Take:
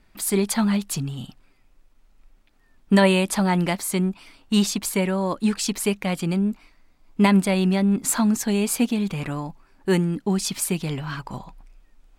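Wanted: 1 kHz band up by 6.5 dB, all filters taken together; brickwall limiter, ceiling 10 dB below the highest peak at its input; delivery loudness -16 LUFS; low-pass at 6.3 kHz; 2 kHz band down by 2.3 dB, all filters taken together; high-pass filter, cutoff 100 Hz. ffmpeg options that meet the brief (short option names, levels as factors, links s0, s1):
-af "highpass=100,lowpass=6300,equalizer=f=1000:t=o:g=8.5,equalizer=f=2000:t=o:g=-5,volume=2.51,alimiter=limit=0.631:level=0:latency=1"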